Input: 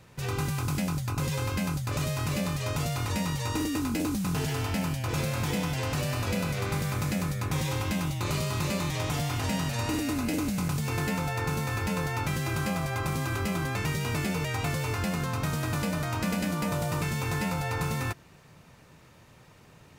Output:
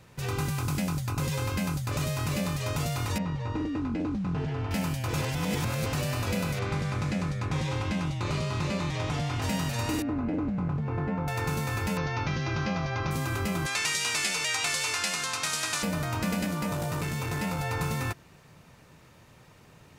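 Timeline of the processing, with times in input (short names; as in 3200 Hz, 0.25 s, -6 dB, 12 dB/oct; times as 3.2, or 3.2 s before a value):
3.18–4.71 tape spacing loss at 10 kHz 33 dB
5.22–5.86 reverse
6.59–9.42 air absorption 83 m
10.02–11.28 LPF 1200 Hz
11.97–13.11 steep low-pass 6200 Hz 72 dB/oct
13.66–15.83 weighting filter ITU-R 468
16.46–17.59 core saturation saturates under 340 Hz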